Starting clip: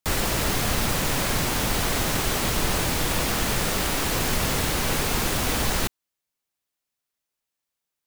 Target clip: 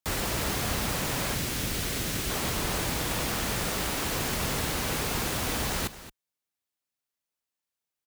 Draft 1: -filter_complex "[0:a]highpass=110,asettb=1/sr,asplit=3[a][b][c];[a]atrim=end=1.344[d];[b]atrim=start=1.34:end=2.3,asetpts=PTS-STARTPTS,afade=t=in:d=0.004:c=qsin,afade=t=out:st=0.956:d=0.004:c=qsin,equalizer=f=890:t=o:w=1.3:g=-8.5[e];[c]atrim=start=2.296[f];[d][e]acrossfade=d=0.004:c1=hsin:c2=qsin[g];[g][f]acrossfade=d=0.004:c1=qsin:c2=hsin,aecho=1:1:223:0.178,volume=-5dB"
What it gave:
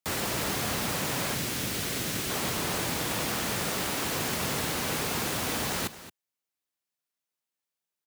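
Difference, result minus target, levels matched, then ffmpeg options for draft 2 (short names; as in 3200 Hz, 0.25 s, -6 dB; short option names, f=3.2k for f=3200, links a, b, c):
125 Hz band -2.5 dB
-filter_complex "[0:a]highpass=36,asettb=1/sr,asplit=3[a][b][c];[a]atrim=end=1.344[d];[b]atrim=start=1.34:end=2.3,asetpts=PTS-STARTPTS,afade=t=in:d=0.004:c=qsin,afade=t=out:st=0.956:d=0.004:c=qsin,equalizer=f=890:t=o:w=1.3:g=-8.5[e];[c]atrim=start=2.296[f];[d][e]acrossfade=d=0.004:c1=hsin:c2=qsin[g];[g][f]acrossfade=d=0.004:c1=qsin:c2=hsin,aecho=1:1:223:0.178,volume=-5dB"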